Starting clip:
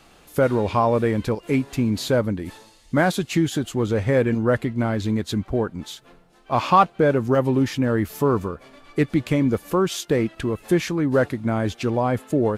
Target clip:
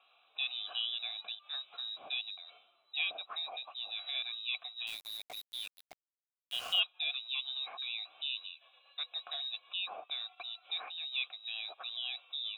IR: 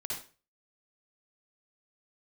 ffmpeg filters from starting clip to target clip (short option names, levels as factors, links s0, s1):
-filter_complex "[0:a]lowpass=f=3400:t=q:w=0.5098,lowpass=f=3400:t=q:w=0.6013,lowpass=f=3400:t=q:w=0.9,lowpass=f=3400:t=q:w=2.563,afreqshift=-4000,asplit=3[s0][s1][s2];[s0]bandpass=f=730:t=q:w=8,volume=1[s3];[s1]bandpass=f=1090:t=q:w=8,volume=0.501[s4];[s2]bandpass=f=2440:t=q:w=8,volume=0.355[s5];[s3][s4][s5]amix=inputs=3:normalize=0,asettb=1/sr,asplit=3[s6][s7][s8];[s6]atrim=end=4.874[s9];[s7]atrim=start=4.87:end=6.8,asetpts=PTS-STARTPTS,afade=t=in:d=0.004:c=qsin,afade=t=out:st=1.926:d=0.004:c=qsin,aeval=exprs='val(0)*gte(abs(val(0)),0.0075)':c=same[s10];[s8]atrim=start=6.796[s11];[s9][s10]acrossfade=d=0.004:c1=hsin:c2=qsin[s12];[s12][s11]acrossfade=d=0.004:c1=qsin:c2=hsin"